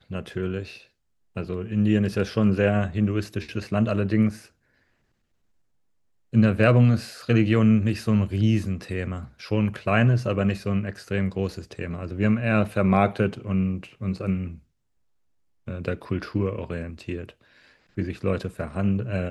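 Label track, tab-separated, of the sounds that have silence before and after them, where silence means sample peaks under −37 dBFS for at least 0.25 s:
1.360000	4.390000	sound
6.330000	14.550000	sound
15.670000	17.300000	sound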